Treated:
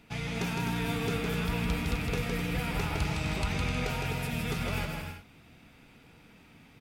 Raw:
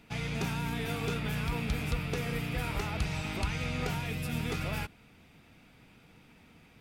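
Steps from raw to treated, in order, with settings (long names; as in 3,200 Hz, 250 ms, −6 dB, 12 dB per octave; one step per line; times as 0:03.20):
bouncing-ball delay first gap 160 ms, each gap 0.6×, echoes 5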